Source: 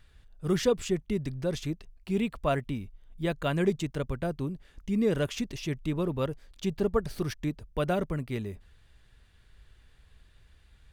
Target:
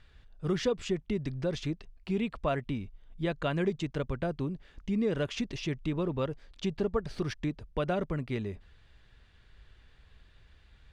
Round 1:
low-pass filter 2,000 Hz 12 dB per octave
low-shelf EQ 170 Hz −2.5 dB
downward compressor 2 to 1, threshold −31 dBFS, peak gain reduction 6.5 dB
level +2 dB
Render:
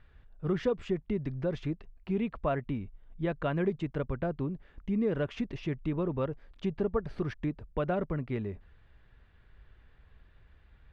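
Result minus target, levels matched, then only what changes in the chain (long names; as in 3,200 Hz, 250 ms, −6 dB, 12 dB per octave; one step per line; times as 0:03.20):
4,000 Hz band −8.5 dB
change: low-pass filter 5,100 Hz 12 dB per octave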